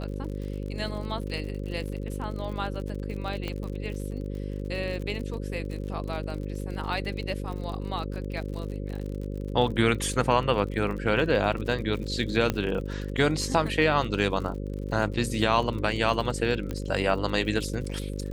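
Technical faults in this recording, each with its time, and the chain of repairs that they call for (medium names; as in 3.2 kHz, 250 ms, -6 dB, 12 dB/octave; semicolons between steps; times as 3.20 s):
buzz 50 Hz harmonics 11 -33 dBFS
crackle 52 per s -35 dBFS
3.48 s: pop -18 dBFS
12.50 s: pop -11 dBFS
16.71 s: pop -19 dBFS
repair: de-click; de-hum 50 Hz, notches 11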